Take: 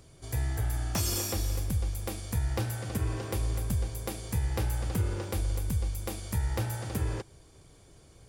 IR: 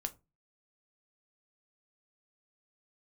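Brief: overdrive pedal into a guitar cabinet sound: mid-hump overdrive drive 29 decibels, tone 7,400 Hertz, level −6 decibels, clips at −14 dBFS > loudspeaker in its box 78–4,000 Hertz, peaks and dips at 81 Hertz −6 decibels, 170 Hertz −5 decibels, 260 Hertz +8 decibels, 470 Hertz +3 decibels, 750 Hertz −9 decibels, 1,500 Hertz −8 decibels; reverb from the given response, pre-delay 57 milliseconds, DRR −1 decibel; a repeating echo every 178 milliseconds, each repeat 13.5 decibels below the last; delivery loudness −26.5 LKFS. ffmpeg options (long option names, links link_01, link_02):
-filter_complex "[0:a]aecho=1:1:178|356:0.211|0.0444,asplit=2[link_01][link_02];[1:a]atrim=start_sample=2205,adelay=57[link_03];[link_02][link_03]afir=irnorm=-1:irlink=0,volume=1.5dB[link_04];[link_01][link_04]amix=inputs=2:normalize=0,asplit=2[link_05][link_06];[link_06]highpass=frequency=720:poles=1,volume=29dB,asoftclip=type=tanh:threshold=-14dB[link_07];[link_05][link_07]amix=inputs=2:normalize=0,lowpass=frequency=7400:poles=1,volume=-6dB,highpass=78,equalizer=frequency=81:width_type=q:width=4:gain=-6,equalizer=frequency=170:width_type=q:width=4:gain=-5,equalizer=frequency=260:width_type=q:width=4:gain=8,equalizer=frequency=470:width_type=q:width=4:gain=3,equalizer=frequency=750:width_type=q:width=4:gain=-9,equalizer=frequency=1500:width_type=q:width=4:gain=-8,lowpass=frequency=4000:width=0.5412,lowpass=frequency=4000:width=1.3066,volume=-0.5dB"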